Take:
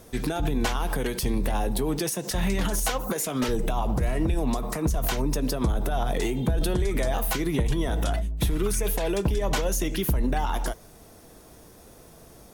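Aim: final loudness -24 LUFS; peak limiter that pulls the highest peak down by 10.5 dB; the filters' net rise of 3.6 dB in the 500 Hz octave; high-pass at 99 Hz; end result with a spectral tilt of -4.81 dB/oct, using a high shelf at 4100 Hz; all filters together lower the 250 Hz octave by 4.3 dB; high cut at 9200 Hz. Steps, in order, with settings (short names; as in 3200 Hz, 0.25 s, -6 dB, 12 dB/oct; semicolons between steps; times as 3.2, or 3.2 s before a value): HPF 99 Hz; LPF 9200 Hz; bell 250 Hz -9 dB; bell 500 Hz +7.5 dB; high shelf 4100 Hz -5 dB; gain +7.5 dB; limiter -15 dBFS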